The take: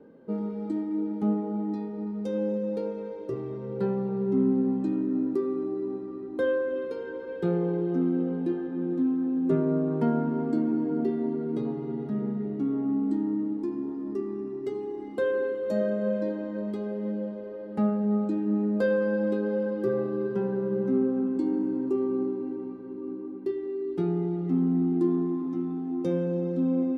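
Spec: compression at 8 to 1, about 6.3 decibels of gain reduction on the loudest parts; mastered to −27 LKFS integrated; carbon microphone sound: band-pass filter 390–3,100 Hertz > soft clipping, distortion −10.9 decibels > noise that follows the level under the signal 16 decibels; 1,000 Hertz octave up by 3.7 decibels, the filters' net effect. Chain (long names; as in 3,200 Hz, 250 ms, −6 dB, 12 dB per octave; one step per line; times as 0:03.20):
parametric band 1,000 Hz +5 dB
downward compressor 8 to 1, threshold −26 dBFS
band-pass filter 390–3,100 Hz
soft clipping −35.5 dBFS
noise that follows the level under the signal 16 dB
level +13 dB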